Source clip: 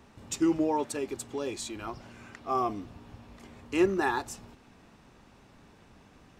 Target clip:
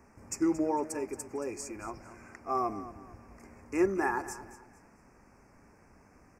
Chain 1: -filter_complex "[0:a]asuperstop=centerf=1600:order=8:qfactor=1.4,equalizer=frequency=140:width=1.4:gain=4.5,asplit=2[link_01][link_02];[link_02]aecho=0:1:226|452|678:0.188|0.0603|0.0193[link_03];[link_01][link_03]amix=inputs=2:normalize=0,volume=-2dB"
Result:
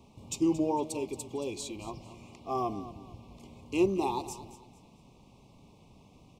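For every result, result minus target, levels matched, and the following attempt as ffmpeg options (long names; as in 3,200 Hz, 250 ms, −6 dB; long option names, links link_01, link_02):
4,000 Hz band +8.0 dB; 125 Hz band +5.5 dB
-filter_complex "[0:a]asuperstop=centerf=3500:order=8:qfactor=1.4,equalizer=frequency=140:width=1.4:gain=4.5,asplit=2[link_01][link_02];[link_02]aecho=0:1:226|452|678:0.188|0.0603|0.0193[link_03];[link_01][link_03]amix=inputs=2:normalize=0,volume=-2dB"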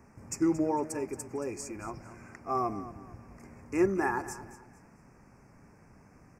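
125 Hz band +5.0 dB
-filter_complex "[0:a]asuperstop=centerf=3500:order=8:qfactor=1.4,equalizer=frequency=140:width=1.4:gain=-4,asplit=2[link_01][link_02];[link_02]aecho=0:1:226|452|678:0.188|0.0603|0.0193[link_03];[link_01][link_03]amix=inputs=2:normalize=0,volume=-2dB"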